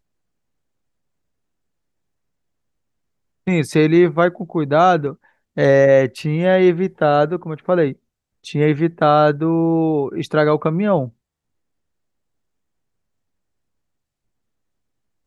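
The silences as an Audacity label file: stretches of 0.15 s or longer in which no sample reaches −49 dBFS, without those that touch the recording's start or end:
5.300000	5.570000	silence
7.960000	8.440000	silence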